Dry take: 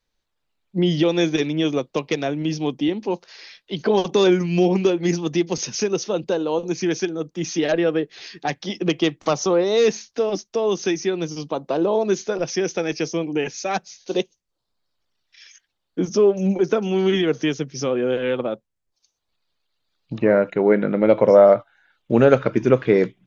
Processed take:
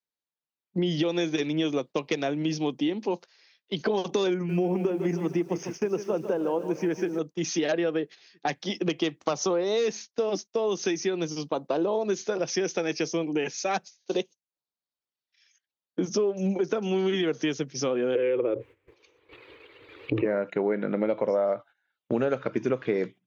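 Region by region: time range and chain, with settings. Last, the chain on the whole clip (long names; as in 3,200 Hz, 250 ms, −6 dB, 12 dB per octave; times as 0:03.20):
0:04.34–0:07.19: moving average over 11 samples + feedback echo at a low word length 151 ms, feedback 55%, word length 8 bits, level −11.5 dB
0:18.15–0:20.25: drawn EQ curve 120 Hz 0 dB, 180 Hz −27 dB, 310 Hz +4 dB, 470 Hz +8 dB, 680 Hz −12 dB, 1,000 Hz −5 dB, 1,500 Hz −7 dB, 2,300 Hz +1 dB, 3,600 Hz −15 dB, 5,100 Hz −28 dB + envelope flattener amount 70%
whole clip: noise gate −34 dBFS, range −16 dB; Bessel high-pass filter 160 Hz; downward compressor 6 to 1, threshold −21 dBFS; level −1.5 dB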